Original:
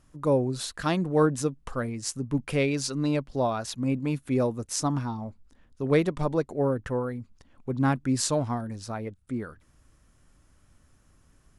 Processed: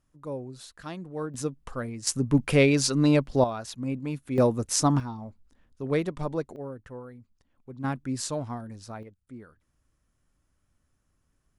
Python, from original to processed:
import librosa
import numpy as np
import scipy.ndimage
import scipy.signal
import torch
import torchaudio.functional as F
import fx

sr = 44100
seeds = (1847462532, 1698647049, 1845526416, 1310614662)

y = fx.gain(x, sr, db=fx.steps((0.0, -12.0), (1.34, -3.0), (2.07, 5.5), (3.44, -4.0), (4.38, 4.5), (5.0, -4.0), (6.56, -12.5), (7.84, -5.5), (9.03, -12.0)))